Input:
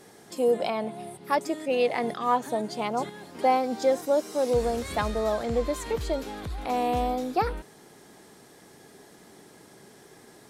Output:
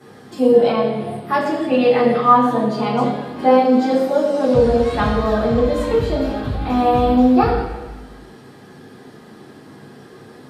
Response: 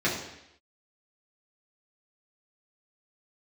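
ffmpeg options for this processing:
-filter_complex "[0:a]asettb=1/sr,asplit=3[a][b][c];[a]atrim=end=4.244[d];[b]atrim=start=4.24:end=5.02,asetpts=PTS-STARTPTS,afade=t=in:d=0.004:c=qsin,afade=t=out:st=0.776:d=0.004:c=qsin,lowpass=10k[e];[c]atrim=start=5.016[f];[d][e]acrossfade=d=0.004:c1=hsin:c2=qsin[g];[g][f]acrossfade=d=0.004:c1=qsin:c2=hsin[h];[1:a]atrim=start_sample=2205,asetrate=31311,aresample=44100[i];[h][i]afir=irnorm=-1:irlink=0,volume=-5.5dB"

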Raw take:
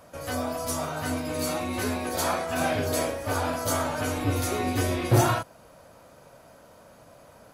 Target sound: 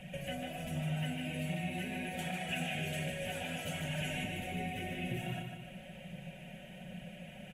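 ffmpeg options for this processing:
-filter_complex "[0:a]acompressor=threshold=-41dB:ratio=2,aecho=1:1:5.4:0.64,acrossover=split=2000|5900[a][b][c];[a]acompressor=threshold=-37dB:ratio=4[d];[b]acompressor=threshold=-60dB:ratio=4[e];[c]acompressor=threshold=-50dB:ratio=4[f];[d][e][f]amix=inputs=3:normalize=0,asetnsamples=n=441:p=0,asendcmd='2.19 equalizer g 14.5;4.24 equalizer g 6',equalizer=f=6.4k:w=0.4:g=8,aphaser=in_gain=1:out_gain=1:delay=4.7:decay=0.35:speed=1.3:type=triangular,firequalizer=gain_entry='entry(110,0);entry(170,11);entry(300,-8);entry(450,-8);entry(720,-5);entry(1100,-28);entry(1700,-2);entry(2800,8);entry(4500,-23);entry(7800,-14)':delay=0.05:min_phase=1,aecho=1:1:150|300|450|600|750|900:0.531|0.25|0.117|0.0551|0.0259|0.0122,volume=1dB"

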